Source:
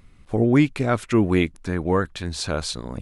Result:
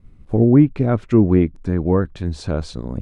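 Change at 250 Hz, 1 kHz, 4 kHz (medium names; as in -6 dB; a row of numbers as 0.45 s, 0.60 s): +5.0 dB, -2.5 dB, no reading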